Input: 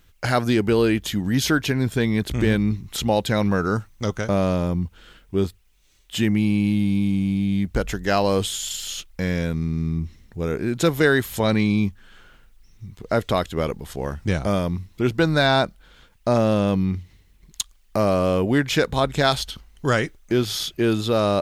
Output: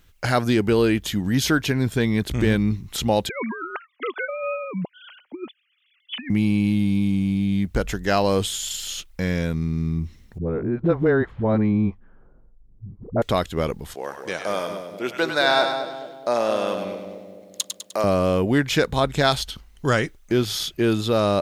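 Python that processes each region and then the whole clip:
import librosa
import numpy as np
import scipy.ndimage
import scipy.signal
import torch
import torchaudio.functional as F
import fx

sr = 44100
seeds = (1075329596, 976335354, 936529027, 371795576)

y = fx.chain(x, sr, fx.sine_speech(),
    fx.tilt_eq(slope=4.5),
    fx.over_compress(threshold_db=-28.0, ratio=-0.5), at=(3.29, 6.3))
y = fx.chain(y, sr, fx.lowpass(hz=1100.0, slope=12),
    fx.env_lowpass(base_hz=480.0, full_db=-16.5),
    fx.dispersion(late='highs', ms=56.0, hz=320.0), at=(10.38, 13.22))
y = fx.chain(y, sr, fx.highpass(hz=460.0, slope=12),
    fx.echo_split(split_hz=660.0, low_ms=217, high_ms=101, feedback_pct=52, wet_db=-6.0), at=(13.94, 18.04))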